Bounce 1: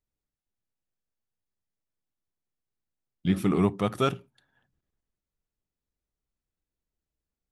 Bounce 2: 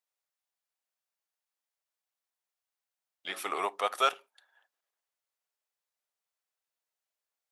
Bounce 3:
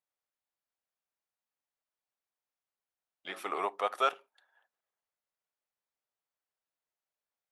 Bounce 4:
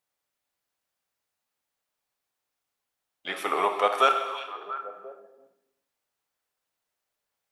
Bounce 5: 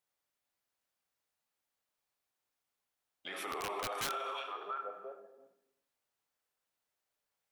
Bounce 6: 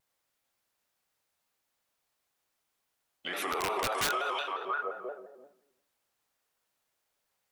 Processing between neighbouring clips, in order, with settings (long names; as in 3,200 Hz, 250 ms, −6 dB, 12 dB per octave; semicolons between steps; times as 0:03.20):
high-pass filter 600 Hz 24 dB per octave; level +3 dB
high-shelf EQ 2,800 Hz −10.5 dB
echo through a band-pass that steps 344 ms, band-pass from 3,200 Hz, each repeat −1.4 octaves, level −9.5 dB; reverb whose tail is shaped and stops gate 440 ms falling, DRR 5.5 dB; level +8 dB
wrap-around overflow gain 14.5 dB; brickwall limiter −26.5 dBFS, peak gain reduction 12 dB; level −4 dB
pitch modulation by a square or saw wave square 5.7 Hz, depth 100 cents; level +7 dB